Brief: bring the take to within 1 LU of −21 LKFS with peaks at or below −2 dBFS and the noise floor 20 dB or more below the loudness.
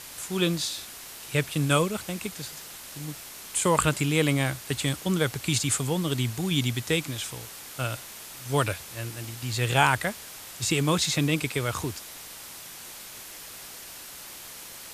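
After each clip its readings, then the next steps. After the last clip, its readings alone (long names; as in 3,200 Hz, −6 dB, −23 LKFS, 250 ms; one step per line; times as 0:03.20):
background noise floor −43 dBFS; target noise floor −47 dBFS; integrated loudness −27.0 LKFS; sample peak −4.5 dBFS; target loudness −21.0 LKFS
→ broadband denoise 6 dB, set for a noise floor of −43 dBFS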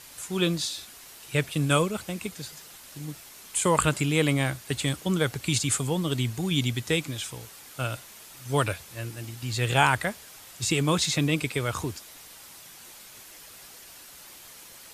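background noise floor −48 dBFS; integrated loudness −27.0 LKFS; sample peak −4.5 dBFS; target loudness −21.0 LKFS
→ level +6 dB
brickwall limiter −2 dBFS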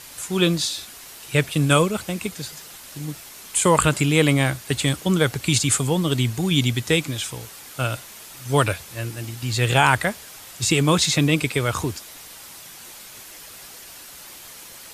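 integrated loudness −21.0 LKFS; sample peak −2.0 dBFS; background noise floor −42 dBFS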